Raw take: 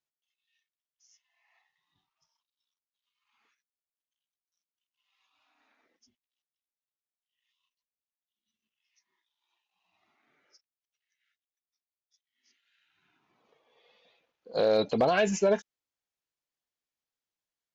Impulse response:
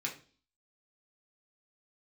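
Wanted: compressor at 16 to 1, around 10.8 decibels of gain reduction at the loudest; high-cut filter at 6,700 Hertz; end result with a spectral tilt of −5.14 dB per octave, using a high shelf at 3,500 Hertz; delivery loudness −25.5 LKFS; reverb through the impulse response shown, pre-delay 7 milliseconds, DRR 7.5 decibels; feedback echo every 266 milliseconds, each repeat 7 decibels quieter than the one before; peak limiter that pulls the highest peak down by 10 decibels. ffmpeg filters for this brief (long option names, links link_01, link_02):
-filter_complex "[0:a]lowpass=6700,highshelf=frequency=3500:gain=-8.5,acompressor=threshold=-31dB:ratio=16,alimiter=level_in=6.5dB:limit=-24dB:level=0:latency=1,volume=-6.5dB,aecho=1:1:266|532|798|1064|1330:0.447|0.201|0.0905|0.0407|0.0183,asplit=2[link_01][link_02];[1:a]atrim=start_sample=2205,adelay=7[link_03];[link_02][link_03]afir=irnorm=-1:irlink=0,volume=-10dB[link_04];[link_01][link_04]amix=inputs=2:normalize=0,volume=14dB"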